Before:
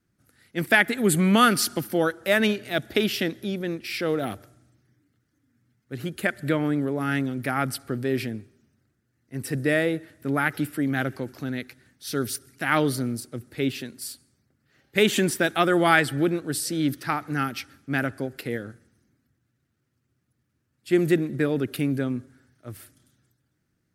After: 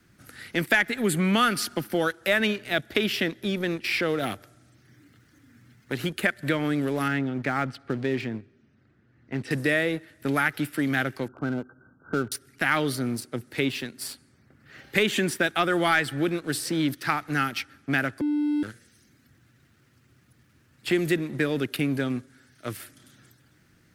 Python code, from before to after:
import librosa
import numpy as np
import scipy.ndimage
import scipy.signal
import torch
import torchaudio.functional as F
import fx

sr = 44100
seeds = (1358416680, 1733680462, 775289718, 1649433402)

y = fx.spacing_loss(x, sr, db_at_10k=31, at=(7.08, 9.51))
y = fx.brickwall_lowpass(y, sr, high_hz=1600.0, at=(11.28, 12.32))
y = fx.edit(y, sr, fx.bleep(start_s=18.21, length_s=0.42, hz=296.0, db=-22.0), tone=tone)
y = fx.peak_eq(y, sr, hz=2400.0, db=5.5, octaves=2.4)
y = fx.leveller(y, sr, passes=1)
y = fx.band_squash(y, sr, depth_pct=70)
y = y * librosa.db_to_amplitude(-6.5)